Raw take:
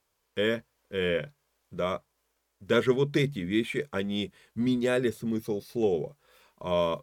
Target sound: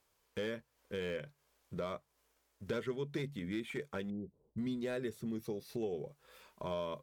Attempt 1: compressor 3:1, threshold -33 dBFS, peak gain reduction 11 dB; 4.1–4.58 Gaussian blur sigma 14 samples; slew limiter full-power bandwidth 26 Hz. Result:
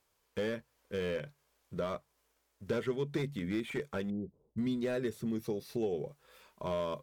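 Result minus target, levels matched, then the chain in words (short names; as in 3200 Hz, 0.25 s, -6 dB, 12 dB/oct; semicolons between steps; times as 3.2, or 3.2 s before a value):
compressor: peak gain reduction -4.5 dB
compressor 3:1, threshold -39.5 dBFS, peak gain reduction 15.5 dB; 4.1–4.58 Gaussian blur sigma 14 samples; slew limiter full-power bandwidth 26 Hz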